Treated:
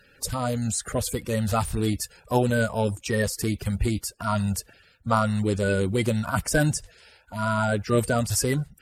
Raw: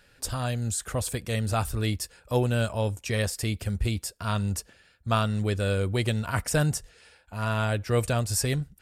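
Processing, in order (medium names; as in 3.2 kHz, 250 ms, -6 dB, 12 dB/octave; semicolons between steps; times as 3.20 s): coarse spectral quantiser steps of 30 dB; trim +3 dB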